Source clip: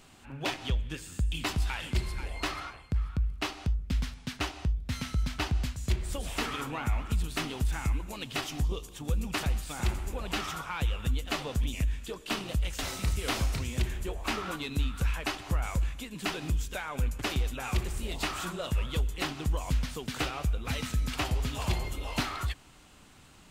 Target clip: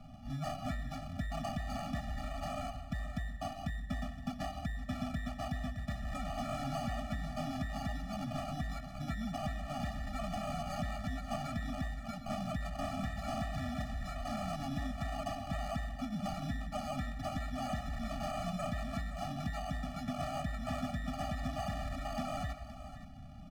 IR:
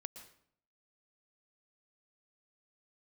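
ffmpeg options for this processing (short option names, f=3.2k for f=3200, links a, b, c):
-filter_complex "[0:a]acrossover=split=120|1300[a][b][c];[c]acrusher=bits=6:mix=0:aa=0.000001[d];[a][b][d]amix=inputs=3:normalize=0,highshelf=f=5.4k:g=-10.5,acrusher=samples=24:mix=1:aa=0.000001,alimiter=level_in=1.5dB:limit=-24dB:level=0:latency=1:release=180,volume=-1.5dB,asplit=2[e][f];[1:a]atrim=start_sample=2205[g];[f][g]afir=irnorm=-1:irlink=0,volume=-0.5dB[h];[e][h]amix=inputs=2:normalize=0,acrossover=split=230|3000[i][j][k];[i]acompressor=threshold=-43dB:ratio=6[l];[l][j][k]amix=inputs=3:normalize=0,asoftclip=type=tanh:threshold=-33.5dB,aemphasis=mode=reproduction:type=50kf,aecho=1:1:519:0.224,afftfilt=real='re*eq(mod(floor(b*sr/1024/280),2),0)':imag='im*eq(mod(floor(b*sr/1024/280),2),0)':win_size=1024:overlap=0.75,volume=5dB"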